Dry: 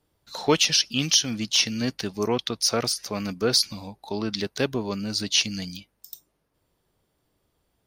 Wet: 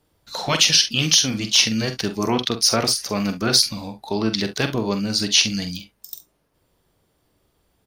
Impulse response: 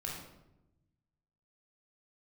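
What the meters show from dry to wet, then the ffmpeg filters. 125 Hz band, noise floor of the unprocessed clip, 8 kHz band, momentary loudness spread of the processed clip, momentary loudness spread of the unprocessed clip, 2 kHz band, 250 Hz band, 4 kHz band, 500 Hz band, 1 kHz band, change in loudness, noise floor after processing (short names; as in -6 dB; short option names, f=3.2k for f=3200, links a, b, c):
+6.0 dB, -74 dBFS, +5.5 dB, 17 LU, 17 LU, +5.5 dB, +4.5 dB, +5.5 dB, +1.5 dB, +5.0 dB, +5.0 dB, -68 dBFS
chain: -filter_complex "[0:a]afftfilt=real='re*lt(hypot(re,im),0.501)':imag='im*lt(hypot(re,im),0.501)':win_size=1024:overlap=0.75,asplit=2[a][b];[b]aecho=0:1:45|69:0.355|0.126[c];[a][c]amix=inputs=2:normalize=0,volume=5.5dB"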